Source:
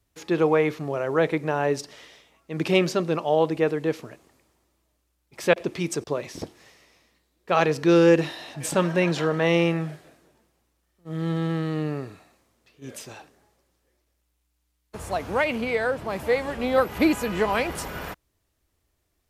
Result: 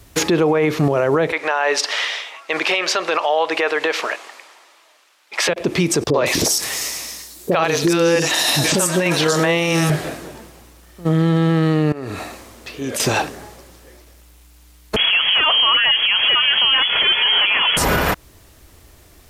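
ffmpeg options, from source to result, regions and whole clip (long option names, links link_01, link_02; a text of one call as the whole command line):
ffmpeg -i in.wav -filter_complex "[0:a]asettb=1/sr,asplit=3[link_01][link_02][link_03];[link_01]atrim=end=1.324[link_04];[link_02]atrim=start=1.32:end=5.49,asetpts=PTS-STARTPTS,afade=type=in:duration=0.004:curve=qsin,afade=type=out:start_time=4.166:duration=0.004:curve=qsin,highpass=700,lowpass=2800,aemphasis=mode=production:type=riaa[link_05];[link_03]atrim=start=5.486[link_06];[link_04][link_05]acrossfade=duration=0.004:curve1=hsin:curve2=qsin[link_07];[link_07][link_06]acrossfade=duration=0.004:curve1=qsin:curve2=hsin,asettb=1/sr,asplit=3[link_08][link_09][link_10];[link_08]atrim=end=6.104[link_11];[link_09]atrim=start=6.1:end=9.9,asetpts=PTS-STARTPTS,afade=type=in:duration=0.004:curve=qsin,afade=type=out:start_time=3.796:duration=0.004:curve=qsin,bass=frequency=250:gain=-6,treble=frequency=4000:gain=13,acrossover=split=470|4200[link_12][link_13][link_14];[link_13]adelay=40[link_15];[link_14]adelay=160[link_16];[link_12][link_15][link_16]amix=inputs=3:normalize=0,atrim=end_sample=167580[link_17];[link_10]atrim=start=9.896[link_18];[link_11][link_17]acrossfade=duration=0.004:curve1=hsin:curve2=qsin[link_19];[link_19][link_18]acrossfade=duration=0.004:curve1=qsin:curve2=hsin,asettb=1/sr,asplit=3[link_20][link_21][link_22];[link_20]atrim=end=11.924[link_23];[link_21]atrim=start=11.92:end=13,asetpts=PTS-STARTPTS,afade=type=in:duration=0.004:curve=qsin,afade=type=out:start_time=1.076:duration=0.004:curve=qsin,equalizer=frequency=150:width_type=o:width=0.28:gain=-15,acompressor=threshold=-49dB:ratio=4:attack=3.2:release=140:knee=1:detection=peak[link_24];[link_22]atrim=start=12.996[link_25];[link_23][link_24]acrossfade=duration=0.004:curve1=hsin:curve2=qsin[link_26];[link_26][link_25]acrossfade=duration=0.004:curve1=qsin:curve2=hsin,asettb=1/sr,asplit=3[link_27][link_28][link_29];[link_27]atrim=end=14.964[link_30];[link_28]atrim=start=14.96:end=17.77,asetpts=PTS-STARTPTS,afade=type=in:duration=0.004:curve=qsin,afade=type=out:start_time=2.806:duration=0.004:curve=qsin,aeval=exprs='0.112*(abs(mod(val(0)/0.112+3,4)-2)-1)':channel_layout=same,lowpass=frequency=2900:width_type=q:width=0.5098,lowpass=frequency=2900:width_type=q:width=0.6013,lowpass=frequency=2900:width_type=q:width=0.9,lowpass=frequency=2900:width_type=q:width=2.563,afreqshift=-3400[link_31];[link_29]atrim=start=17.766[link_32];[link_30][link_31]acrossfade=duration=0.004:curve1=hsin:curve2=qsin[link_33];[link_33][link_32]acrossfade=duration=0.004:curve1=qsin:curve2=hsin,acompressor=threshold=-34dB:ratio=8,alimiter=level_in=33dB:limit=-1dB:release=50:level=0:latency=1,volume=-7dB" out.wav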